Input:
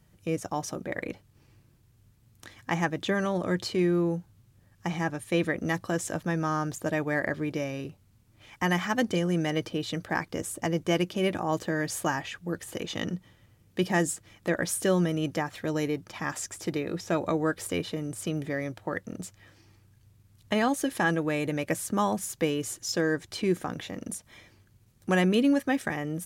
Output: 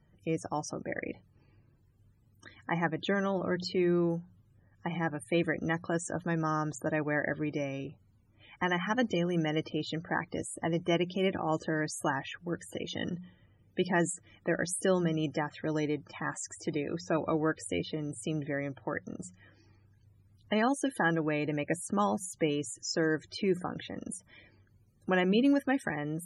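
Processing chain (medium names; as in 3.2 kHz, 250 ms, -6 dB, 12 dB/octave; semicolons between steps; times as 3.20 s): hum notches 60/120/180 Hz; loudest bins only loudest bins 64; trim -2.5 dB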